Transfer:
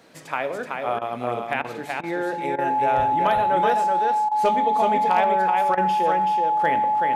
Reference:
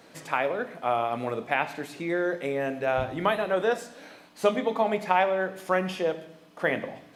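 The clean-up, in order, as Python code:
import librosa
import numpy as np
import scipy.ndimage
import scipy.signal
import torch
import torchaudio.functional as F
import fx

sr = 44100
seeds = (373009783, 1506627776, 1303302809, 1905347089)

y = fx.fix_declip(x, sr, threshold_db=-10.0)
y = fx.notch(y, sr, hz=850.0, q=30.0)
y = fx.fix_interpolate(y, sr, at_s=(0.99, 1.62, 2.01, 2.56, 4.29, 5.75), length_ms=23.0)
y = fx.fix_echo_inverse(y, sr, delay_ms=378, level_db=-4.0)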